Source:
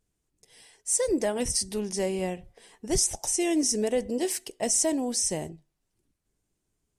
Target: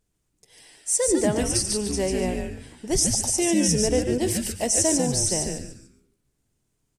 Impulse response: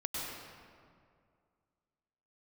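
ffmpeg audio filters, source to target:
-filter_complex "[0:a]asplit=5[s0][s1][s2][s3][s4];[s1]adelay=146,afreqshift=-140,volume=0.668[s5];[s2]adelay=292,afreqshift=-280,volume=0.207[s6];[s3]adelay=438,afreqshift=-420,volume=0.0646[s7];[s4]adelay=584,afreqshift=-560,volume=0.02[s8];[s0][s5][s6][s7][s8]amix=inputs=5:normalize=0,asplit=2[s9][s10];[1:a]atrim=start_sample=2205,atrim=end_sample=6174[s11];[s10][s11]afir=irnorm=-1:irlink=0,volume=0.447[s12];[s9][s12]amix=inputs=2:normalize=0"

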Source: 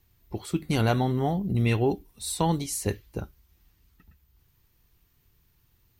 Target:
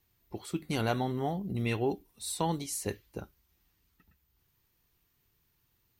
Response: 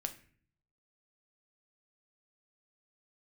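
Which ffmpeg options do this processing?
-af "lowshelf=f=120:g=-10,volume=0.596"

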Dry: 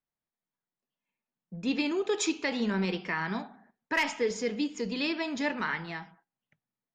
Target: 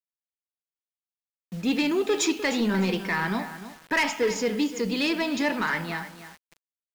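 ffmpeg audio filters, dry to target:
-af "acontrast=67,asoftclip=type=tanh:threshold=0.15,aecho=1:1:302|604:0.211|0.0444,acrusher=bits=7:mix=0:aa=0.000001"

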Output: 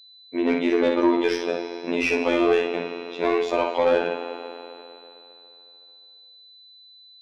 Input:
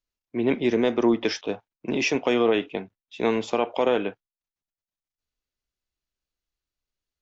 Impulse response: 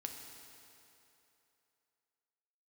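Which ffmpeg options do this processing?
-filter_complex "[0:a]asplit=2[s0][s1];[1:a]atrim=start_sample=2205,adelay=56[s2];[s1][s2]afir=irnorm=-1:irlink=0,volume=0.75[s3];[s0][s3]amix=inputs=2:normalize=0,afftfilt=real='hypot(re,im)*cos(PI*b)':imag='0':win_size=2048:overlap=0.75,aeval=exprs='val(0)+0.00251*sin(2*PI*4000*n/s)':c=same,asplit=2[s4][s5];[s5]highpass=f=720:p=1,volume=7.08,asoftclip=type=tanh:threshold=0.447[s6];[s4][s6]amix=inputs=2:normalize=0,lowpass=f=1800:p=1,volume=0.501"

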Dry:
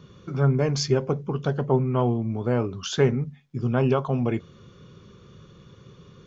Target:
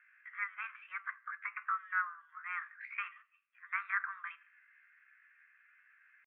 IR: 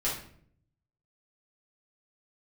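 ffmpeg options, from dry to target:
-filter_complex "[0:a]asuperpass=centerf=1200:order=12:qfactor=1.2,asplit=2[s0][s1];[1:a]atrim=start_sample=2205[s2];[s1][s2]afir=irnorm=-1:irlink=0,volume=0.075[s3];[s0][s3]amix=inputs=2:normalize=0,asetrate=64194,aresample=44100,atempo=0.686977,volume=0.75"

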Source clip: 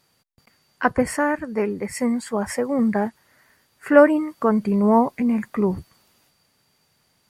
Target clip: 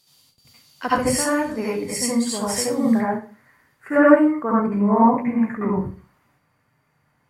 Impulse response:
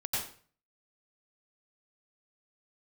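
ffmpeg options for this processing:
-filter_complex "[0:a]asetnsamples=n=441:p=0,asendcmd='2.93 highshelf g -6;4.23 highshelf g -11.5',highshelf=f=2600:t=q:w=1.5:g=10[s0];[1:a]atrim=start_sample=2205,asetrate=57330,aresample=44100[s1];[s0][s1]afir=irnorm=-1:irlink=0,volume=0.794"

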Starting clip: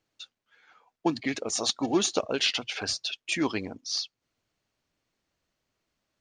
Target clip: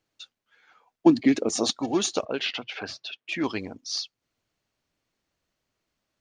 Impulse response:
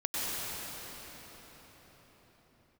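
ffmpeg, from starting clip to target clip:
-filter_complex "[0:a]asettb=1/sr,asplit=3[s0][s1][s2];[s0]atrim=end=1.064[s3];[s1]atrim=start=1.06:end=1.73,asetpts=PTS-STARTPTS,afade=t=in:d=0.004:c=qsin,afade=t=out:st=0.666:d=0.004:c=qsin,equalizer=f=280:w=0.79:g=12[s4];[s2]atrim=start=1.726[s5];[s3][s4]acrossfade=d=0.004:c1=hsin:c2=qsin[s6];[s6][s5]acrossfade=d=0.004:c1=qsin:c2=hsin,asettb=1/sr,asplit=3[s7][s8][s9];[s7]atrim=end=2.254[s10];[s8]atrim=start=2.25:end=3.44,asetpts=PTS-STARTPTS,afade=t=in:d=0.004:c=qsin,afade=t=out:st=1.186:d=0.004:c=qsin,highpass=120,lowpass=3100[s11];[s9]atrim=start=3.436[s12];[s10][s11]acrossfade=d=0.004:c1=hsin:c2=qsin[s13];[s13][s12]acrossfade=d=0.004:c1=qsin:c2=hsin"

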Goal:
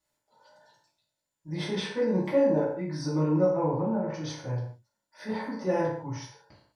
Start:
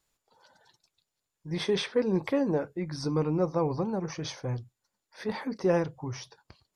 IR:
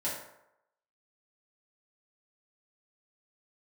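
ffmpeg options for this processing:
-filter_complex "[0:a]asettb=1/sr,asplit=3[s0][s1][s2];[s0]atrim=end=3.494[s3];[s1]atrim=start=3.49:end=4.14,asetpts=PTS-STARTPTS,afade=t=in:d=0.004:c=qsin,afade=t=out:st=0.646:d=0.004:c=qsin,lowpass=f=2600:w=0.5412,lowpass=f=2600:w=1.3066[s4];[s2]atrim=start=4.136[s5];[s3][s4]acrossfade=d=0.004:c1=hsin:c2=qsin[s6];[s6][s5]acrossfade=d=0.004:c1=qsin:c2=hsin[s7];[1:a]atrim=start_sample=2205,afade=t=out:st=0.26:d=0.01,atrim=end_sample=11907[s8];[s7][s8]afir=irnorm=-1:irlink=0,volume=0.562"

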